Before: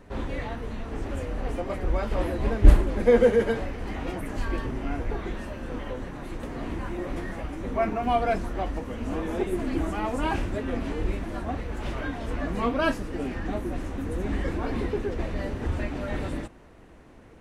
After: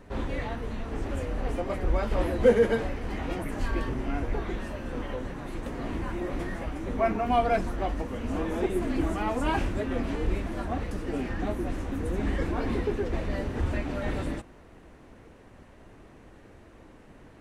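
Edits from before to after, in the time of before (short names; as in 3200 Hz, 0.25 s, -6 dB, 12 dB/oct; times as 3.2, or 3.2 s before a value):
2.43–3.2 cut
11.68–12.97 cut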